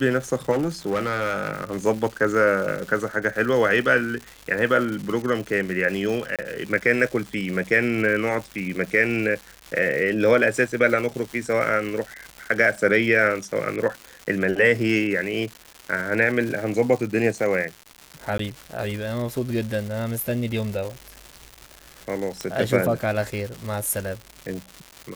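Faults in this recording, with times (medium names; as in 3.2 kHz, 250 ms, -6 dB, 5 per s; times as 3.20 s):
crackle 330 per s -30 dBFS
0.51–1.74 s: clipped -18.5 dBFS
6.36–6.39 s: dropout 27 ms
18.38–18.39 s: dropout 13 ms
22.41 s: pop -14 dBFS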